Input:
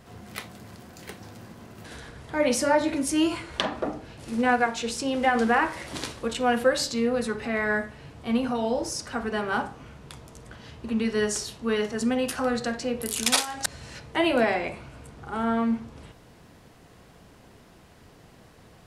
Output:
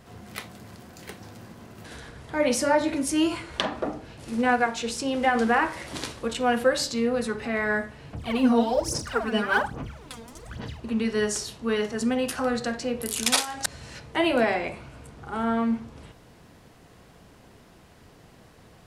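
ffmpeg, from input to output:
ffmpeg -i in.wav -filter_complex "[0:a]asettb=1/sr,asplit=3[link_01][link_02][link_03];[link_01]atrim=end=8.134[link_04];[link_02]atrim=start=8.13:end=10.8,asetpts=PTS-STARTPTS,afade=type=in:duration=0.004:curve=qsin,afade=type=out:start_time=2.666:duration=0.004:curve=qsin,aphaser=in_gain=1:out_gain=1:delay=4.4:decay=0.75:speed=1.2:type=sinusoidal[link_05];[link_03]atrim=start=10.796[link_06];[link_04][link_05]acrossfade=duration=0.004:curve1=hsin:curve2=qsin[link_07];[link_07][link_06]acrossfade=duration=0.004:curve1=qsin:curve2=hsin" out.wav

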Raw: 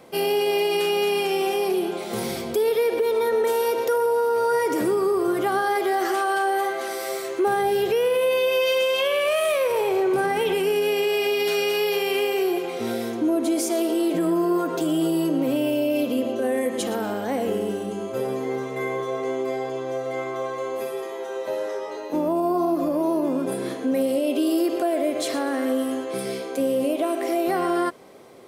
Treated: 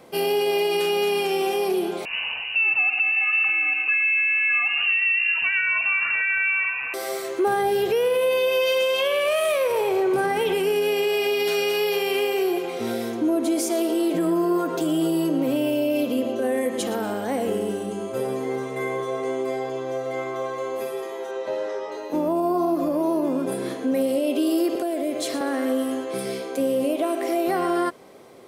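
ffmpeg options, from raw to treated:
ffmpeg -i in.wav -filter_complex "[0:a]asettb=1/sr,asplit=3[link_01][link_02][link_03];[link_01]atrim=end=2.054[link_04];[link_02]atrim=start=2.05:end=6.94,asetpts=PTS-STARTPTS,afade=type=in:duration=0.004:curve=qsin,afade=type=out:start_time=4.886:duration=0.004:curve=qsin,lowpass=frequency=2600:width_type=q:width=0.5098,lowpass=frequency=2600:width_type=q:width=0.6013,lowpass=frequency=2600:width_type=q:width=0.9,lowpass=frequency=2600:width_type=q:width=2.563,afreqshift=-3100[link_05];[link_03]atrim=start=6.936[link_06];[link_04][link_05]acrossfade=duration=0.004:curve1=hsin:curve2=qsin[link_07];[link_07][link_06]acrossfade=duration=0.004:curve1=qsin:curve2=hsin,asettb=1/sr,asplit=3[link_08][link_09][link_10];[link_08]atrim=end=17.034[link_11];[link_09]atrim=start=17.03:end=19.6,asetpts=PTS-STARTPTS,afade=type=in:duration=0.004:curve=qsin,afade=type=out:start_time=2.566:duration=0.004:curve=qsin,equalizer=frequency=8900:width=4.5:gain=7.5[link_12];[link_10]atrim=start=19.596[link_13];[link_11][link_12]acrossfade=duration=0.004:curve1=hsin:curve2=qsin[link_14];[link_14][link_13]acrossfade=duration=0.004:curve1=qsin:curve2=hsin,asettb=1/sr,asplit=3[link_15][link_16][link_17];[link_15]atrim=end=21.314[link_18];[link_16]atrim=start=21.31:end=21.92,asetpts=PTS-STARTPTS,afade=type=in:duration=0.004:curve=qsin,afade=type=out:start_time=0.606:duration=0.004:curve=qsin,lowpass=6200[link_19];[link_17]atrim=start=21.916[link_20];[link_18][link_19]acrossfade=duration=0.004:curve1=hsin:curve2=qsin[link_21];[link_21][link_20]acrossfade=duration=0.004:curve1=qsin:curve2=hsin,asettb=1/sr,asplit=3[link_22][link_23][link_24];[link_22]atrim=end=24.754[link_25];[link_23]atrim=start=24.75:end=25.41,asetpts=PTS-STARTPTS,afade=type=in:duration=0.004:curve=qsin,afade=type=out:start_time=0.656:duration=0.004:curve=qsin,acrossover=split=460|3000[link_26][link_27][link_28];[link_27]acompressor=threshold=-30dB:ratio=6:attack=3.2:release=140:knee=2.83:detection=peak[link_29];[link_26][link_29][link_28]amix=inputs=3:normalize=0[link_30];[link_24]atrim=start=25.406[link_31];[link_25][link_30]acrossfade=duration=0.004:curve1=hsin:curve2=qsin[link_32];[link_32][link_31]acrossfade=duration=0.004:curve1=qsin:curve2=hsin" out.wav

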